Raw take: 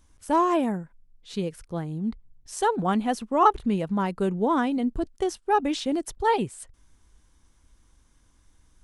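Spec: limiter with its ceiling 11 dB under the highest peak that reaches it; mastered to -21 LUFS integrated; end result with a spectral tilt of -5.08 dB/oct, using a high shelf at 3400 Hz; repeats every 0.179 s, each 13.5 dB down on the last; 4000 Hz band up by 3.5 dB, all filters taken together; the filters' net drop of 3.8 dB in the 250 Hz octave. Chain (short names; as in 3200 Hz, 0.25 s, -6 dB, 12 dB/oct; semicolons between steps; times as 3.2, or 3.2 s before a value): bell 250 Hz -5 dB; high shelf 3400 Hz -4.5 dB; bell 4000 Hz +7.5 dB; limiter -19 dBFS; feedback echo 0.179 s, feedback 21%, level -13.5 dB; gain +9 dB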